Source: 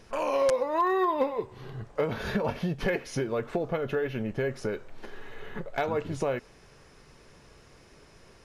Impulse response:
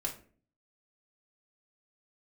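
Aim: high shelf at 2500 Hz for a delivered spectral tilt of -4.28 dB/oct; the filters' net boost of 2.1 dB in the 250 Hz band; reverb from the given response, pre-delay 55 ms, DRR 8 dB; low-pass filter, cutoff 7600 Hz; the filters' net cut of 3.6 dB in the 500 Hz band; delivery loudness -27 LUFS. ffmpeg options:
-filter_complex "[0:a]lowpass=7.6k,equalizer=f=250:t=o:g=5,equalizer=f=500:t=o:g=-5.5,highshelf=f=2.5k:g=-5.5,asplit=2[a][b];[1:a]atrim=start_sample=2205,adelay=55[c];[b][c]afir=irnorm=-1:irlink=0,volume=-10dB[d];[a][d]amix=inputs=2:normalize=0,volume=3.5dB"

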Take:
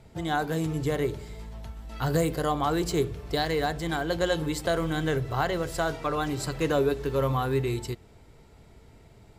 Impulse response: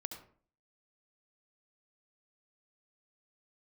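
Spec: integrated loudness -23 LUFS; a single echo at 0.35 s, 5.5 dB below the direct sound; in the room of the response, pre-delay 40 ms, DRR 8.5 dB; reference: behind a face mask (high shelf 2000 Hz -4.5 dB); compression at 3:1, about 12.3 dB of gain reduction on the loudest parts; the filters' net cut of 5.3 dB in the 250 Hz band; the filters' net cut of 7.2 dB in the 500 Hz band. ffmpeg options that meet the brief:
-filter_complex "[0:a]equalizer=f=250:t=o:g=-5.5,equalizer=f=500:t=o:g=-7,acompressor=threshold=-42dB:ratio=3,aecho=1:1:350:0.531,asplit=2[a][b];[1:a]atrim=start_sample=2205,adelay=40[c];[b][c]afir=irnorm=-1:irlink=0,volume=-6.5dB[d];[a][d]amix=inputs=2:normalize=0,highshelf=f=2k:g=-4.5,volume=18.5dB"

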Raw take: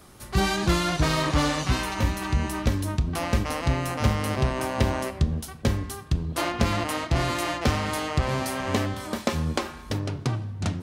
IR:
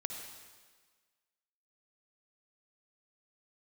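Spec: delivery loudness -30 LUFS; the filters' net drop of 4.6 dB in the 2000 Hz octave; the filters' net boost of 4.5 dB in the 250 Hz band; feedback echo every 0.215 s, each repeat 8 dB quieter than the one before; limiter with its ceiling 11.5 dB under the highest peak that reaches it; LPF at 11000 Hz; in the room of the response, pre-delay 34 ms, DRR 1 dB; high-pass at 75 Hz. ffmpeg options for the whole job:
-filter_complex "[0:a]highpass=75,lowpass=11k,equalizer=f=250:t=o:g=6,equalizer=f=2k:t=o:g=-6,alimiter=limit=-19dB:level=0:latency=1,aecho=1:1:215|430|645|860|1075:0.398|0.159|0.0637|0.0255|0.0102,asplit=2[a][b];[1:a]atrim=start_sample=2205,adelay=34[c];[b][c]afir=irnorm=-1:irlink=0,volume=-1dB[d];[a][d]amix=inputs=2:normalize=0,volume=-4dB"

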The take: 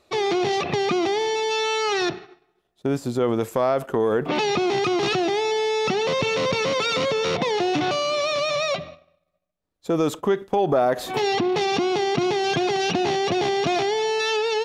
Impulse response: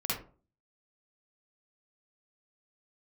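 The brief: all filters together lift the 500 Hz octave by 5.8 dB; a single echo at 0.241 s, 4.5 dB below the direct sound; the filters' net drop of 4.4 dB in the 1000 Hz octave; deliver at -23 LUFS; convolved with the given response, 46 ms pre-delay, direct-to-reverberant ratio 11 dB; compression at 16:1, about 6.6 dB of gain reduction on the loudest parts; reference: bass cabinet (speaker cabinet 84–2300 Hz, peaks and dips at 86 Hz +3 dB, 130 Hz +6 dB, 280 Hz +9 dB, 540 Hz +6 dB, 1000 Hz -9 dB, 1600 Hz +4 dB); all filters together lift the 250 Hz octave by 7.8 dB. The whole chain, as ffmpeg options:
-filter_complex "[0:a]equalizer=f=250:t=o:g=3.5,equalizer=f=500:t=o:g=4,equalizer=f=1k:t=o:g=-7,acompressor=threshold=-20dB:ratio=16,aecho=1:1:241:0.596,asplit=2[a][b];[1:a]atrim=start_sample=2205,adelay=46[c];[b][c]afir=irnorm=-1:irlink=0,volume=-17dB[d];[a][d]amix=inputs=2:normalize=0,highpass=f=84:w=0.5412,highpass=f=84:w=1.3066,equalizer=f=86:t=q:w=4:g=3,equalizer=f=130:t=q:w=4:g=6,equalizer=f=280:t=q:w=4:g=9,equalizer=f=540:t=q:w=4:g=6,equalizer=f=1k:t=q:w=4:g=-9,equalizer=f=1.6k:t=q:w=4:g=4,lowpass=f=2.3k:w=0.5412,lowpass=f=2.3k:w=1.3066,volume=-3dB"

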